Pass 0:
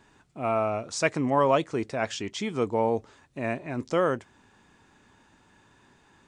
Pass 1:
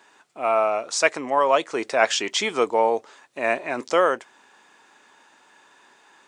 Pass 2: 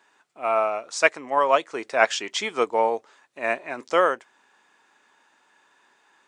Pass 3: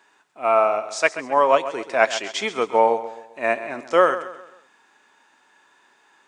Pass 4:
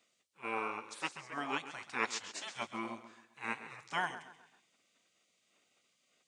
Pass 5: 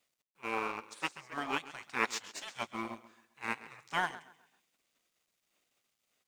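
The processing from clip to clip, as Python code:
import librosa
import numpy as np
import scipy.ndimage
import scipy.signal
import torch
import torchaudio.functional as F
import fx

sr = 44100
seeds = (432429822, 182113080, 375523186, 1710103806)

y1 = scipy.signal.sosfilt(scipy.signal.butter(2, 520.0, 'highpass', fs=sr, output='sos'), x)
y1 = fx.rider(y1, sr, range_db=10, speed_s=0.5)
y1 = F.gain(torch.from_numpy(y1), 8.5).numpy()
y2 = fx.peak_eq(y1, sr, hz=1600.0, db=2.5, octaves=1.6)
y2 = fx.upward_expand(y2, sr, threshold_db=-29.0, expansion=1.5)
y3 = fx.hpss(y2, sr, part='harmonic', gain_db=6)
y3 = fx.echo_feedback(y3, sr, ms=132, feedback_pct=40, wet_db=-13.0)
y3 = F.gain(torch.from_numpy(y3), -1.0).numpy()
y4 = fx.spec_gate(y3, sr, threshold_db=-15, keep='weak')
y4 = F.gain(torch.from_numpy(y4), -8.0).numpy()
y5 = fx.law_mismatch(y4, sr, coded='A')
y5 = F.gain(torch.from_numpy(y5), 4.0).numpy()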